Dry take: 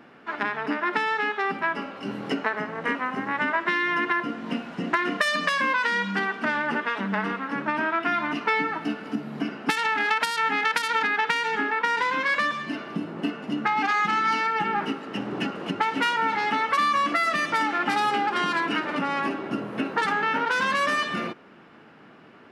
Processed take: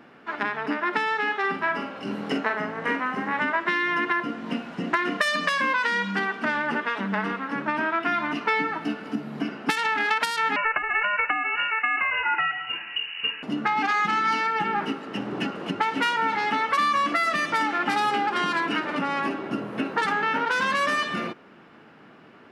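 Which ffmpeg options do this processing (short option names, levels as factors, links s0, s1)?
-filter_complex "[0:a]asettb=1/sr,asplit=3[s0][s1][s2];[s0]atrim=end=1.234[s3];[s1]atrim=start=1.23:end=3.4,asetpts=PTS-STARTPTS,afade=t=in:d=0.004:c=qsin,afade=t=out:st=2.166:d=0.004:c=qsin,asplit=2[s4][s5];[s5]adelay=44,volume=0.501[s6];[s4][s6]amix=inputs=2:normalize=0,atrim=end_sample=95697[s7];[s2]atrim=start=3.396[s8];[s3][s7]acrossfade=d=0.004:c1=hsin:c2=qsin[s9];[s9][s8]acrossfade=d=0.004:c1=qsin:c2=hsin,asettb=1/sr,asplit=3[s10][s11][s12];[s10]atrim=end=10.564[s13];[s11]atrim=start=10.56:end=13.43,asetpts=PTS-STARTPTS,afade=t=in:d=0.004:c=qsin,afade=t=out:st=2.866:d=0.004:c=qsin,lowpass=f=2600:t=q:w=0.5098,lowpass=f=2600:t=q:w=0.6013,lowpass=f=2600:t=q:w=0.9,lowpass=f=2600:t=q:w=2.563,afreqshift=-3100[s14];[s12]atrim=start=13.426[s15];[s13][s14]acrossfade=d=0.004:c1=hsin:c2=qsin[s16];[s16][s15]acrossfade=d=0.004:c1=qsin:c2=hsin"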